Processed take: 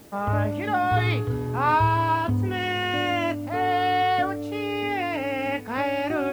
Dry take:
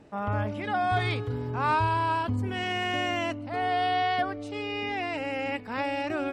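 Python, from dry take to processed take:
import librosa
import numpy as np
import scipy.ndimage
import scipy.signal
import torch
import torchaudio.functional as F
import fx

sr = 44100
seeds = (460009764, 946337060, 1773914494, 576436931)

p1 = fx.lowpass(x, sr, hz=3100.0, slope=6)
p2 = fx.quant_dither(p1, sr, seeds[0], bits=8, dither='triangular')
p3 = p1 + F.gain(torch.from_numpy(p2), -9.5).numpy()
p4 = fx.doubler(p3, sr, ms=27.0, db=-11.5)
y = F.gain(torch.from_numpy(p4), 2.0).numpy()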